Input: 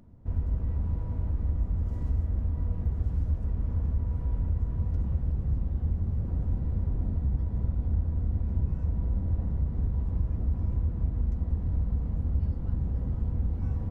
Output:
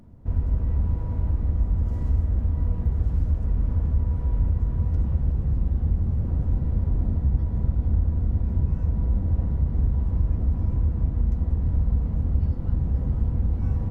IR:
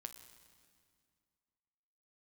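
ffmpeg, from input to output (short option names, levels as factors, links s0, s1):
-filter_complex "[0:a]asplit=2[s0][s1];[1:a]atrim=start_sample=2205,asetrate=32193,aresample=44100[s2];[s1][s2]afir=irnorm=-1:irlink=0,volume=1.19[s3];[s0][s3]amix=inputs=2:normalize=0"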